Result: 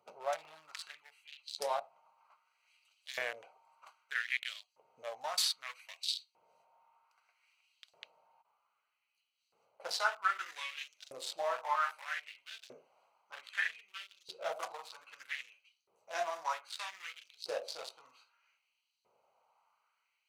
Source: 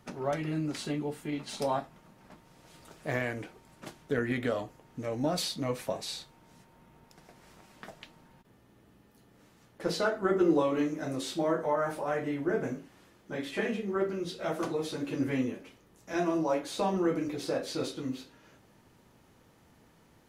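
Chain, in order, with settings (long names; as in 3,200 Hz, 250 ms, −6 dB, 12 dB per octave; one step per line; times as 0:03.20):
adaptive Wiener filter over 25 samples
auto-filter high-pass saw up 0.63 Hz 400–4,300 Hz
guitar amp tone stack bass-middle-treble 10-0-10
level +5 dB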